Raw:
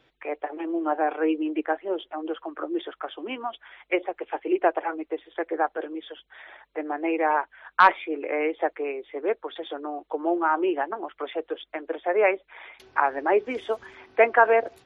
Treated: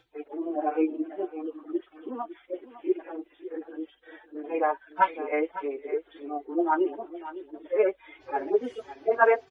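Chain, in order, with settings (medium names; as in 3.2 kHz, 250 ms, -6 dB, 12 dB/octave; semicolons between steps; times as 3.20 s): harmonic-percussive separation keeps harmonic; plain phase-vocoder stretch 0.64×; tone controls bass -1 dB, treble +6 dB; on a send: delay 555 ms -14.5 dB; on the sum: trim +3 dB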